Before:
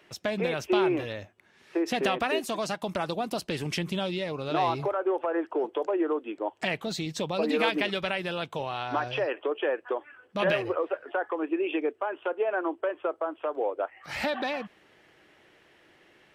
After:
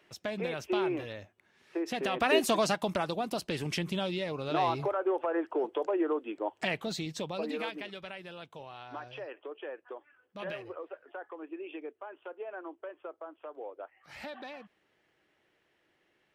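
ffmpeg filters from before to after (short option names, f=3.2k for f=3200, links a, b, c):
-af "volume=5dB,afade=t=in:st=2.1:d=0.34:silence=0.281838,afade=t=out:st=2.44:d=0.64:silence=0.421697,afade=t=out:st=6.85:d=0.92:silence=0.281838"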